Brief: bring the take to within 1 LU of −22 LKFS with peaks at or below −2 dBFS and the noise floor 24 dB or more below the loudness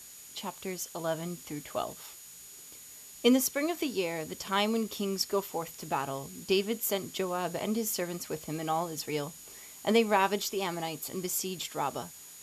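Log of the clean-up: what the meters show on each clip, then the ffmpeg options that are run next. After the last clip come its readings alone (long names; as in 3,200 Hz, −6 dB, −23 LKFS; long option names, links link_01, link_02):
interfering tone 6,800 Hz; level of the tone −51 dBFS; background noise floor −49 dBFS; target noise floor −56 dBFS; integrated loudness −32.0 LKFS; sample peak −11.0 dBFS; target loudness −22.0 LKFS
→ -af "bandreject=frequency=6800:width=30"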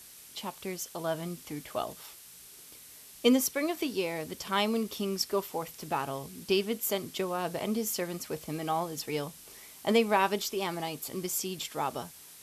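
interfering tone none found; background noise floor −51 dBFS; target noise floor −56 dBFS
→ -af "afftdn=noise_reduction=6:noise_floor=-51"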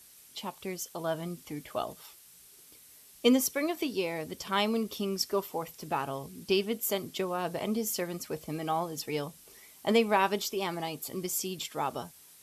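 background noise floor −56 dBFS; integrated loudness −32.0 LKFS; sample peak −11.0 dBFS; target loudness −22.0 LKFS
→ -af "volume=10dB,alimiter=limit=-2dB:level=0:latency=1"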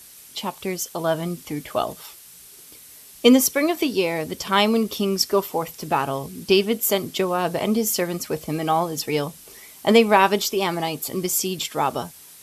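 integrated loudness −22.0 LKFS; sample peak −2.0 dBFS; background noise floor −46 dBFS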